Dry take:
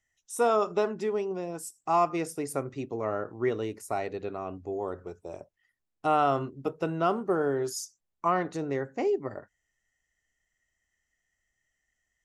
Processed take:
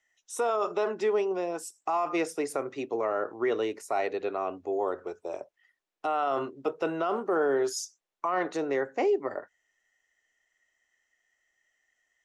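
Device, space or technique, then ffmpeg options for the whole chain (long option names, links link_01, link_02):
DJ mixer with the lows and highs turned down: -filter_complex "[0:a]acrossover=split=310 6600:gain=0.1 1 0.251[link_01][link_02][link_03];[link_01][link_02][link_03]amix=inputs=3:normalize=0,alimiter=level_in=1dB:limit=-24dB:level=0:latency=1:release=21,volume=-1dB,equalizer=frequency=4700:width=5.3:gain=-3,volume=6dB"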